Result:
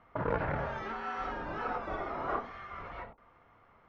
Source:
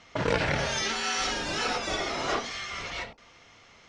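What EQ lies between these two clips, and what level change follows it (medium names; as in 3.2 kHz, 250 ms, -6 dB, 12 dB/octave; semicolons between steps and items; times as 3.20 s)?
resonant low-pass 1.2 kHz, resonance Q 1.7; bass shelf 88 Hz +5.5 dB; -7.0 dB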